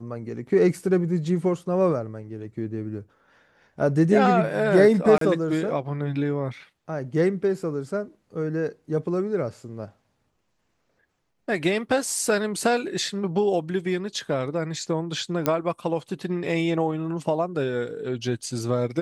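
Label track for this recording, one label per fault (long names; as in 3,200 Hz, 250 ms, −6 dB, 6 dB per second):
5.180000	5.210000	drop-out 33 ms
15.460000	15.460000	click −8 dBFS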